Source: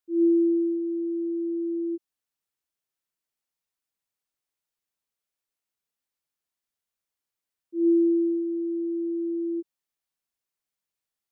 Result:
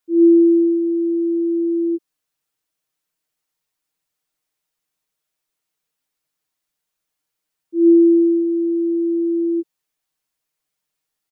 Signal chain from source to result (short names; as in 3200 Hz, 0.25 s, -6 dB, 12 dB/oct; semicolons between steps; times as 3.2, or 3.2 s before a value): comb 6.5 ms; gain +6.5 dB